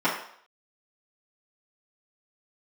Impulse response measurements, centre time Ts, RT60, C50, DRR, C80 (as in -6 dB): 34 ms, 0.60 s, 5.0 dB, -11.0 dB, 8.5 dB